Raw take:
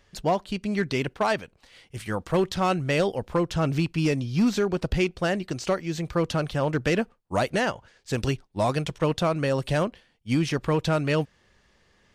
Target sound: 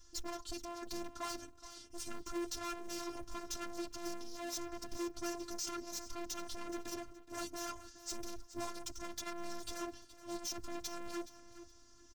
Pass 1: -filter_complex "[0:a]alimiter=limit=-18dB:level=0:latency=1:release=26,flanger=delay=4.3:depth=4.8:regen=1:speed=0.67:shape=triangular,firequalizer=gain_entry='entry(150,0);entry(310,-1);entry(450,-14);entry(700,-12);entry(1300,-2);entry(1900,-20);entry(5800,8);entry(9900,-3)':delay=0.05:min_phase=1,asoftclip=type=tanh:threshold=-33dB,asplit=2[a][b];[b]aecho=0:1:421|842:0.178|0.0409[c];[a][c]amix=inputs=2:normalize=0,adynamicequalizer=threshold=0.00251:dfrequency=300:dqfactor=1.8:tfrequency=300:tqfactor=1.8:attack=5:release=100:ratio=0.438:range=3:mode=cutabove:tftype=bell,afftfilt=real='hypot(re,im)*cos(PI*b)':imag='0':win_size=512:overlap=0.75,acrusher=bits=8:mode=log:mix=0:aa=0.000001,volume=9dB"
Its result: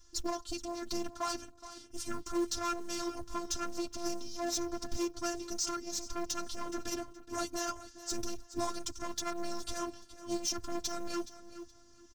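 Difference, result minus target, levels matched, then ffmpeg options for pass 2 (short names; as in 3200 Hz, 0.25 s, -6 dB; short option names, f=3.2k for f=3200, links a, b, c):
soft clip: distortion -5 dB
-filter_complex "[0:a]alimiter=limit=-18dB:level=0:latency=1:release=26,flanger=delay=4.3:depth=4.8:regen=1:speed=0.67:shape=triangular,firequalizer=gain_entry='entry(150,0);entry(310,-1);entry(450,-14);entry(700,-12);entry(1300,-2);entry(1900,-20);entry(5800,8);entry(9900,-3)':delay=0.05:min_phase=1,asoftclip=type=tanh:threshold=-43.5dB,asplit=2[a][b];[b]aecho=0:1:421|842:0.178|0.0409[c];[a][c]amix=inputs=2:normalize=0,adynamicequalizer=threshold=0.00251:dfrequency=300:dqfactor=1.8:tfrequency=300:tqfactor=1.8:attack=5:release=100:ratio=0.438:range=3:mode=cutabove:tftype=bell,afftfilt=real='hypot(re,im)*cos(PI*b)':imag='0':win_size=512:overlap=0.75,acrusher=bits=8:mode=log:mix=0:aa=0.000001,volume=9dB"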